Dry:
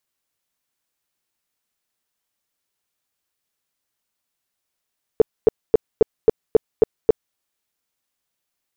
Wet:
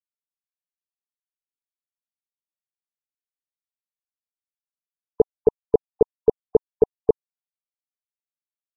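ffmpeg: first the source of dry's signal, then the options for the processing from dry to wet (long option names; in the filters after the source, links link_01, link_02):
-f lavfi -i "aevalsrc='0.473*sin(2*PI*443*mod(t,0.27))*lt(mod(t,0.27),7/443)':duration=2.16:sample_rate=44100"
-af "afftfilt=real='re*gte(hypot(re,im),0.0501)':imag='im*gte(hypot(re,im),0.0501)':win_size=1024:overlap=0.75"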